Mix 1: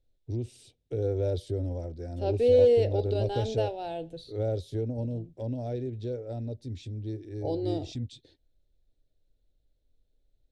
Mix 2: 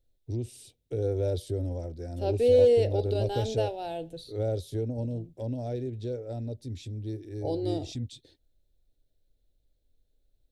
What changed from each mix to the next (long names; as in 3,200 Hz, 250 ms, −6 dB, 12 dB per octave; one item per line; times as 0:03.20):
master: remove high-frequency loss of the air 60 metres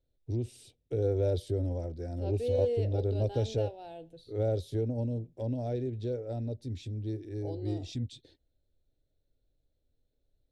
second voice −10.0 dB
master: add high-shelf EQ 6,800 Hz −9.5 dB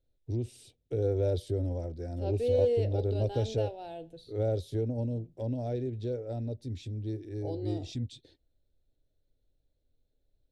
reverb: on, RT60 0.45 s